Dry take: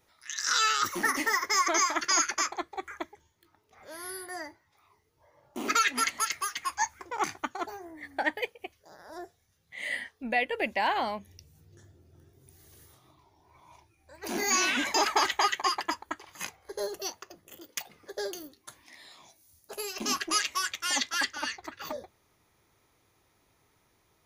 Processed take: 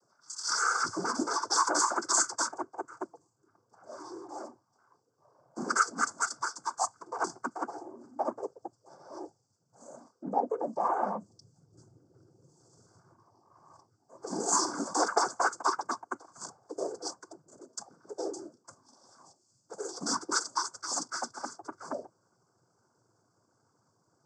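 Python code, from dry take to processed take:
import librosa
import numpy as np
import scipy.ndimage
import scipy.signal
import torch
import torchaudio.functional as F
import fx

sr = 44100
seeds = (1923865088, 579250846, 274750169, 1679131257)

y = fx.brickwall_bandstop(x, sr, low_hz=1400.0, high_hz=5000.0)
y = fx.noise_vocoder(y, sr, seeds[0], bands=16)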